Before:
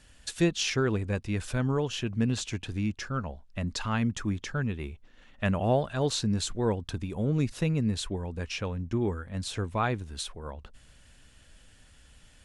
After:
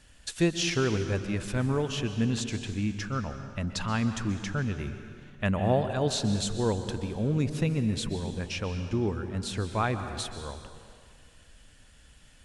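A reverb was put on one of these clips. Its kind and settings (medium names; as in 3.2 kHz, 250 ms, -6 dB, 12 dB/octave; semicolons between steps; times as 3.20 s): plate-style reverb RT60 2 s, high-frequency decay 0.85×, pre-delay 115 ms, DRR 8.5 dB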